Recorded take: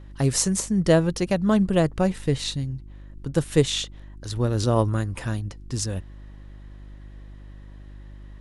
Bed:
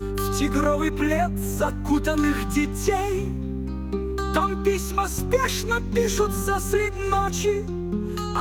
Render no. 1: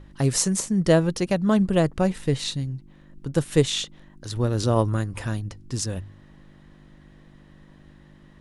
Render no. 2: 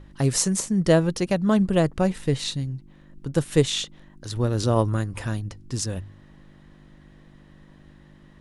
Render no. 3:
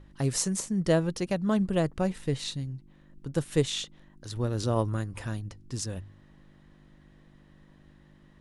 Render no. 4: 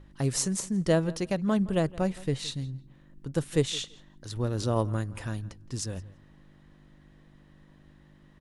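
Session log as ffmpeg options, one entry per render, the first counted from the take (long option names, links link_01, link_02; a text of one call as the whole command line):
ffmpeg -i in.wav -af "bandreject=frequency=50:width_type=h:width=4,bandreject=frequency=100:width_type=h:width=4" out.wav
ffmpeg -i in.wav -af anull out.wav
ffmpeg -i in.wav -af "volume=-6dB" out.wav
ffmpeg -i in.wav -filter_complex "[0:a]asplit=2[link_01][link_02];[link_02]adelay=167,lowpass=frequency=4300:poles=1,volume=-20.5dB,asplit=2[link_03][link_04];[link_04]adelay=167,lowpass=frequency=4300:poles=1,volume=0.17[link_05];[link_01][link_03][link_05]amix=inputs=3:normalize=0" out.wav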